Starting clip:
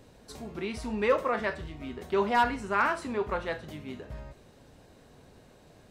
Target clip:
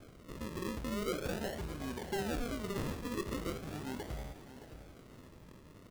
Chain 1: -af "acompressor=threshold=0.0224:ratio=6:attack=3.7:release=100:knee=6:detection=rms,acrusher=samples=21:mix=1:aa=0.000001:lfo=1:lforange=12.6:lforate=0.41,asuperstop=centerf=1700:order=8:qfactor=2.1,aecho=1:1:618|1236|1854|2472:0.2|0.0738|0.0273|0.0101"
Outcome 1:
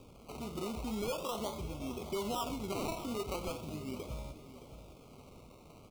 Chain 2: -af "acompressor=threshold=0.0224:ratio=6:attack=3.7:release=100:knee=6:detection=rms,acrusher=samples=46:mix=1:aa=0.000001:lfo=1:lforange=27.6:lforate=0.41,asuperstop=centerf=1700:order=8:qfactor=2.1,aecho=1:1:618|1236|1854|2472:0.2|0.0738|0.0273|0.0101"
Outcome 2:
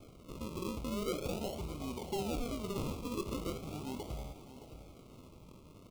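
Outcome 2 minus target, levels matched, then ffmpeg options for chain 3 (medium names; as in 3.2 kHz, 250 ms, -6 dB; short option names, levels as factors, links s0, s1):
2 kHz band -6.0 dB
-af "acompressor=threshold=0.0224:ratio=6:attack=3.7:release=100:knee=6:detection=rms,acrusher=samples=46:mix=1:aa=0.000001:lfo=1:lforange=27.6:lforate=0.41,aecho=1:1:618|1236|1854|2472:0.2|0.0738|0.0273|0.0101"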